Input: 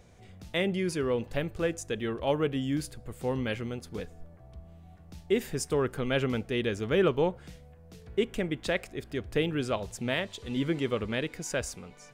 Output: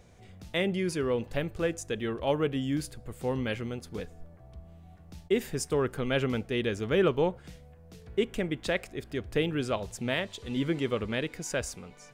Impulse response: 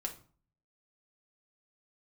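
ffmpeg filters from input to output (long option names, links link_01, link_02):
-filter_complex "[0:a]asplit=3[link_01][link_02][link_03];[link_01]afade=type=out:start_time=5.27:duration=0.02[link_04];[link_02]agate=range=-33dB:threshold=-37dB:ratio=3:detection=peak,afade=type=in:start_time=5.27:duration=0.02,afade=type=out:start_time=7.43:duration=0.02[link_05];[link_03]afade=type=in:start_time=7.43:duration=0.02[link_06];[link_04][link_05][link_06]amix=inputs=3:normalize=0"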